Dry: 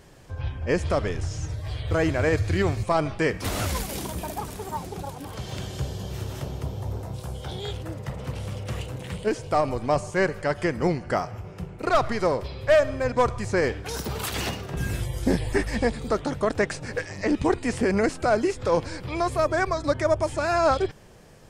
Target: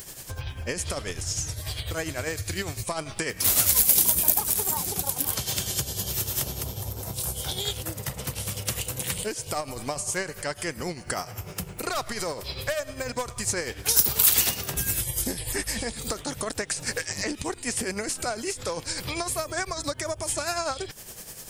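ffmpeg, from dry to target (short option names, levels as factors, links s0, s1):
-af "tremolo=f=10:d=0.61,highshelf=f=11000:g=11,acompressor=threshold=0.0178:ratio=4,crystalizer=i=6:c=0,volume=1.5"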